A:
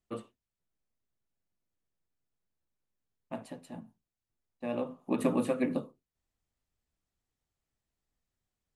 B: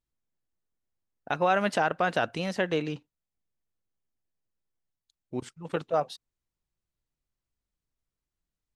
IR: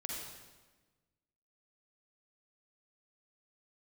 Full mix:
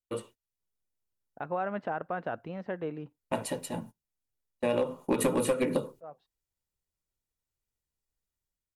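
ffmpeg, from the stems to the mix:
-filter_complex "[0:a]aecho=1:1:2.1:0.44,agate=range=0.112:threshold=0.00178:ratio=16:detection=peak,aemphasis=mode=production:type=cd,volume=1.41,asplit=2[s0][s1];[1:a]lowpass=1400,adelay=100,volume=0.178[s2];[s1]apad=whole_len=390702[s3];[s2][s3]sidechaincompress=threshold=0.00282:ratio=4:attack=42:release=438[s4];[s0][s4]amix=inputs=2:normalize=0,dynaudnorm=f=110:g=7:m=2.51,aeval=exprs='clip(val(0),-1,0.211)':c=same,acompressor=threshold=0.0631:ratio=5"

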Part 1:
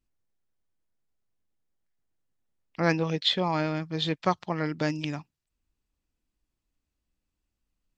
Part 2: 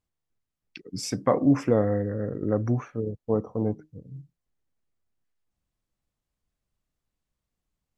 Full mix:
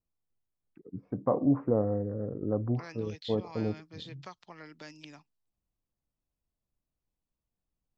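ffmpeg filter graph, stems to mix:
-filter_complex "[0:a]acrossover=split=220|1100[s0][s1][s2];[s0]acompressor=threshold=0.00355:ratio=4[s3];[s1]acompressor=threshold=0.0158:ratio=4[s4];[s2]acompressor=threshold=0.02:ratio=4[s5];[s3][s4][s5]amix=inputs=3:normalize=0,volume=0.224[s6];[1:a]lowpass=f=1100:w=0.5412,lowpass=f=1100:w=1.3066,volume=0.562[s7];[s6][s7]amix=inputs=2:normalize=0,adynamicequalizer=threshold=0.00126:dfrequency=5500:dqfactor=0.8:tfrequency=5500:tqfactor=0.8:attack=5:release=100:ratio=0.375:range=3:mode=boostabove:tftype=bell"

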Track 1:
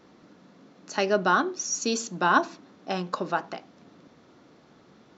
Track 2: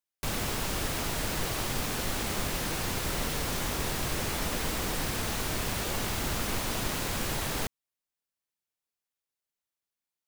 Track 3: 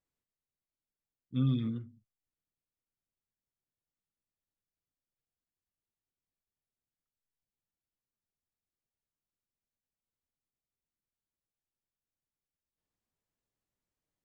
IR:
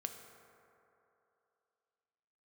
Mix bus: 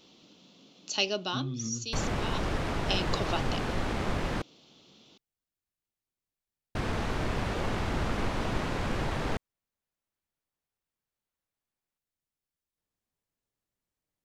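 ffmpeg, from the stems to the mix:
-filter_complex "[0:a]highshelf=f=2300:t=q:w=3:g=9.5,volume=2.24,afade=t=out:st=0.83:d=0.75:silence=0.237137,afade=t=in:st=2.53:d=0.27:silence=0.237137[s0];[1:a]highshelf=f=3000:g=-11.5,adynamicsmooth=sensitivity=3.5:basefreq=5900,adelay=1700,volume=1.41,asplit=3[s1][s2][s3];[s1]atrim=end=4.42,asetpts=PTS-STARTPTS,afade=t=out:st=4.416:d=0.004:c=hsin[s4];[s2]atrim=start=4.42:end=6.75,asetpts=PTS-STARTPTS,volume=0[s5];[s3]atrim=start=6.75,asetpts=PTS-STARTPTS,afade=t=in:d=0.004:c=hsin[s6];[s4][s5][s6]concat=n=3:v=0:a=1[s7];[2:a]acompressor=threshold=0.0224:ratio=6,volume=1.12[s8];[s0][s7][s8]amix=inputs=3:normalize=0"

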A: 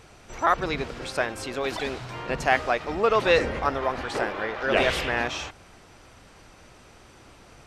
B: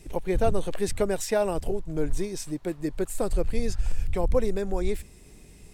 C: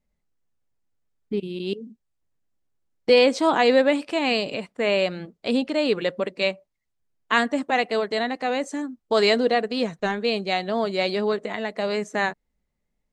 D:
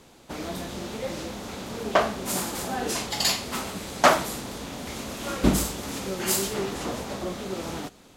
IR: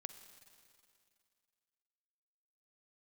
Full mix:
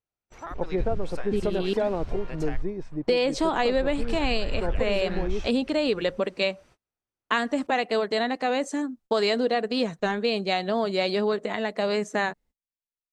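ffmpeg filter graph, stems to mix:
-filter_complex "[0:a]acompressor=threshold=0.0562:ratio=6,volume=0.316,asplit=3[s0][s1][s2];[s0]atrim=end=2.62,asetpts=PTS-STARTPTS,afade=t=out:st=2.616:d=0.004:c=hsin[s3];[s1]atrim=start=2.62:end=3.38,asetpts=PTS-STARTPTS,volume=0[s4];[s2]atrim=start=3.38,asetpts=PTS-STARTPTS,afade=t=in:d=0.004:c=hsin[s5];[s3][s4][s5]concat=n=3:v=0:a=1[s6];[1:a]lowpass=1400,adelay=450,volume=1.06[s7];[2:a]equalizer=f=2100:w=4.7:g=-2.5,volume=1.12[s8];[s6][s7][s8]amix=inputs=3:normalize=0,agate=range=0.02:threshold=0.00316:ratio=16:detection=peak,acompressor=threshold=0.1:ratio=6"

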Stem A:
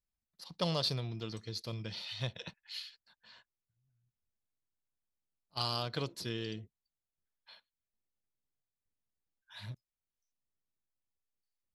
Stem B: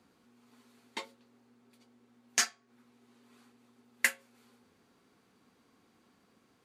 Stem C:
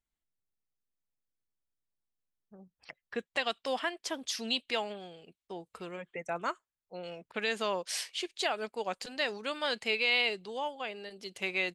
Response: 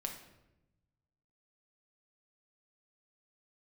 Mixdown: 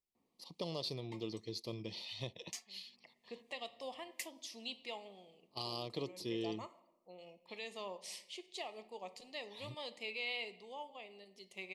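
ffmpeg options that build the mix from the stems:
-filter_complex "[0:a]equalizer=f=350:w=1.5:g=8.5,volume=0.668[s0];[1:a]acrossover=split=2400[s1][s2];[s1]aeval=exprs='val(0)*(1-0.7/2+0.7/2*cos(2*PI*1.1*n/s))':c=same[s3];[s2]aeval=exprs='val(0)*(1-0.7/2-0.7/2*cos(2*PI*1.1*n/s))':c=same[s4];[s3][s4]amix=inputs=2:normalize=0,adelay=150,volume=0.299[s5];[2:a]adelay=150,volume=0.158,asplit=2[s6][s7];[s7]volume=0.708[s8];[3:a]atrim=start_sample=2205[s9];[s8][s9]afir=irnorm=-1:irlink=0[s10];[s0][s5][s6][s10]amix=inputs=4:normalize=0,asuperstop=centerf=1500:order=4:qfactor=1.9,lowshelf=f=100:g=-10,alimiter=level_in=1.41:limit=0.0631:level=0:latency=1:release=493,volume=0.708"

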